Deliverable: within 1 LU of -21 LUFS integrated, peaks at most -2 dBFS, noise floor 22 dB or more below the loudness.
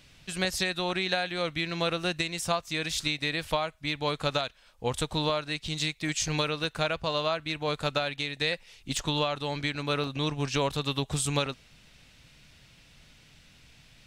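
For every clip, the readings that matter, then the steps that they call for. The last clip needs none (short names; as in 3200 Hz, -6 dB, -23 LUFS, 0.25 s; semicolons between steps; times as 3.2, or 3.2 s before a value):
dropouts 3; longest dropout 1.3 ms; loudness -29.5 LUFS; peak -12.5 dBFS; loudness target -21.0 LUFS
-> interpolate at 6.64/8.97/10.04, 1.3 ms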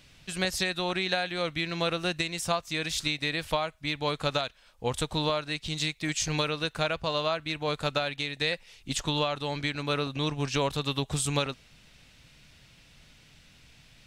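dropouts 0; loudness -29.5 LUFS; peak -12.5 dBFS; loudness target -21.0 LUFS
-> gain +8.5 dB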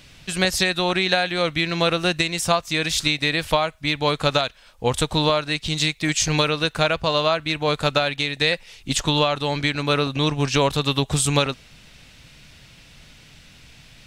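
loudness -21.0 LUFS; peak -4.0 dBFS; noise floor -49 dBFS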